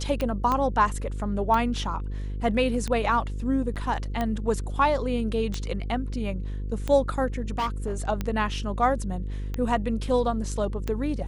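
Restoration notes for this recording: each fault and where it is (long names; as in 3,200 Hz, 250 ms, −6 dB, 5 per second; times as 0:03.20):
mains buzz 50 Hz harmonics 10 −31 dBFS
scratch tick 45 rpm −15 dBFS
0:00.52: click −14 dBFS
0:03.75–0:03.76: drop-out 8.3 ms
0:07.58–0:08.02: clipping −23 dBFS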